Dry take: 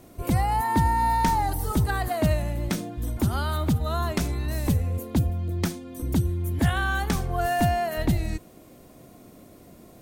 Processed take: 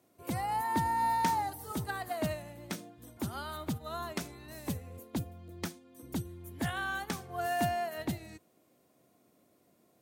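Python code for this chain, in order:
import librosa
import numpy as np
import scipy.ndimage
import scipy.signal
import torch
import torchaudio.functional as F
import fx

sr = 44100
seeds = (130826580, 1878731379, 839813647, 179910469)

y = scipy.signal.sosfilt(scipy.signal.butter(4, 84.0, 'highpass', fs=sr, output='sos'), x)
y = fx.low_shelf(y, sr, hz=210.0, db=-9.0)
y = fx.upward_expand(y, sr, threshold_db=-44.0, expansion=1.5)
y = F.gain(torch.from_numpy(y), -4.5).numpy()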